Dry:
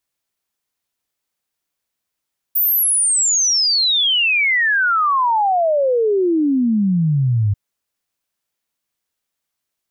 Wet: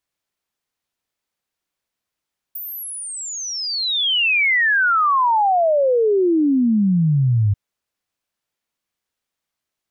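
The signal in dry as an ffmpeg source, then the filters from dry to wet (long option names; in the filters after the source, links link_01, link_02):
-f lavfi -i "aevalsrc='0.224*clip(min(t,4.99-t)/0.01,0,1)*sin(2*PI*15000*4.99/log(98/15000)*(exp(log(98/15000)*t/4.99)-1))':duration=4.99:sample_rate=44100"
-filter_complex "[0:a]highshelf=frequency=6800:gain=-7.5,acrossover=split=3700[link_01][link_02];[link_02]acompressor=threshold=-30dB:ratio=6[link_03];[link_01][link_03]amix=inputs=2:normalize=0"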